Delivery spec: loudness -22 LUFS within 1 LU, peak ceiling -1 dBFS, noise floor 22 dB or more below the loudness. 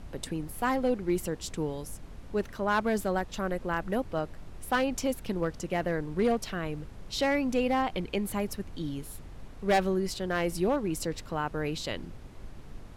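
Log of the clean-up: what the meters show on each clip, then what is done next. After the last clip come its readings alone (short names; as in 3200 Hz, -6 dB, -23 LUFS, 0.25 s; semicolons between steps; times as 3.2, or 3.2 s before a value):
clipped 0.5%; flat tops at -19.0 dBFS; noise floor -46 dBFS; noise floor target -53 dBFS; loudness -31.0 LUFS; peak -19.0 dBFS; loudness target -22.0 LUFS
-> clip repair -19 dBFS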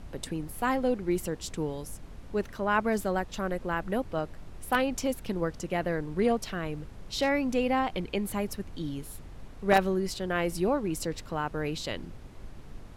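clipped 0.0%; noise floor -46 dBFS; noise floor target -53 dBFS
-> noise print and reduce 7 dB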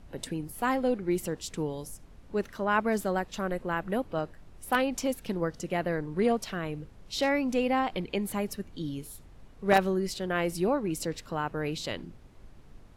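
noise floor -53 dBFS; loudness -30.5 LUFS; peak -10.0 dBFS; loudness target -22.0 LUFS
-> gain +8.5 dB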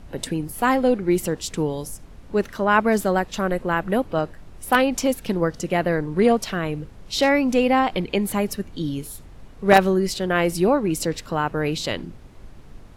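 loudness -22.0 LUFS; peak -1.5 dBFS; noise floor -44 dBFS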